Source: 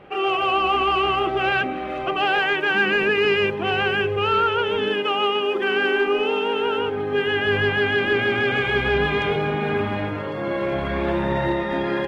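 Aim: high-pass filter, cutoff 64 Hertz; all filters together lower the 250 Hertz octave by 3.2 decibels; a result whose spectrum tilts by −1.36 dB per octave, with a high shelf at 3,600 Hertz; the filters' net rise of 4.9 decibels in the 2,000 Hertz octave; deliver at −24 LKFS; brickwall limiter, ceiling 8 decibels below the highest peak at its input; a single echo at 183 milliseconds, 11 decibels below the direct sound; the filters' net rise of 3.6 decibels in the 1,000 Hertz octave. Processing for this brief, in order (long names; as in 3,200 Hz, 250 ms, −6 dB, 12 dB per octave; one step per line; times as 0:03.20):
high-pass filter 64 Hz
parametric band 250 Hz −5.5 dB
parametric band 1,000 Hz +3.5 dB
parametric band 2,000 Hz +6.5 dB
high-shelf EQ 3,600 Hz −4 dB
brickwall limiter −14.5 dBFS
single-tap delay 183 ms −11 dB
level −2.5 dB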